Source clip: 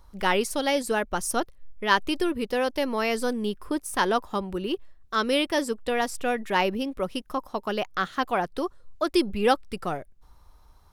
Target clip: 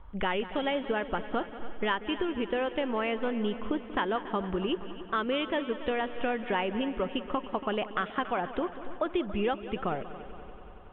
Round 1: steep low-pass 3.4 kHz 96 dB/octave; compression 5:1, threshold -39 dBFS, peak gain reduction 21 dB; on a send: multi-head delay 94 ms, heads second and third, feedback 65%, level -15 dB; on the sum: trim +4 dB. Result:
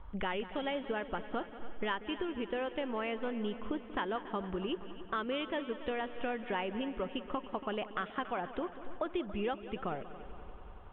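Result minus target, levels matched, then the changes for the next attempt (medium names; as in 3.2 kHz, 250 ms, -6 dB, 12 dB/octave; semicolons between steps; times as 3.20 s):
compression: peak gain reduction +6 dB
change: compression 5:1, threshold -31.5 dBFS, peak gain reduction 15 dB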